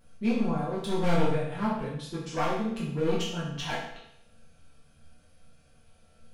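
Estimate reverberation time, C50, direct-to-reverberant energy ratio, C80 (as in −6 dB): 0.75 s, 2.5 dB, −8.5 dB, 6.0 dB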